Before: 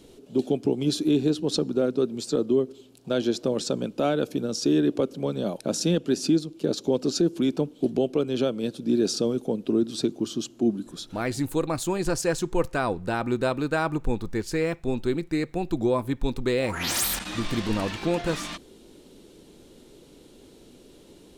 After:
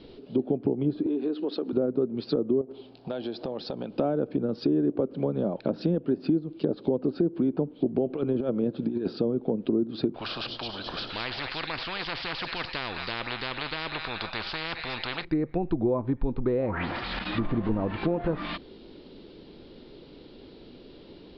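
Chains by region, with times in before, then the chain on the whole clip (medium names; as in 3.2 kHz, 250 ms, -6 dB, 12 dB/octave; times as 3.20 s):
1.06–1.73 s: high-pass 260 Hz 24 dB/octave + compression 2.5:1, threshold -29 dBFS
2.61–3.97 s: peaking EQ 770 Hz +10 dB 0.81 oct + compression 4:1, threshold -34 dBFS
8.06–9.13 s: compressor with a negative ratio -26 dBFS, ratio -0.5 + tape noise reduction on one side only encoder only
10.14–15.25 s: feedback echo behind a high-pass 214 ms, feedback 51%, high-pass 2.1 kHz, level -14 dB + spectrum-flattening compressor 10:1
whole clip: compression 2.5:1, threshold -26 dBFS; steep low-pass 5 kHz 96 dB/octave; low-pass that closes with the level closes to 870 Hz, closed at -25 dBFS; trim +3 dB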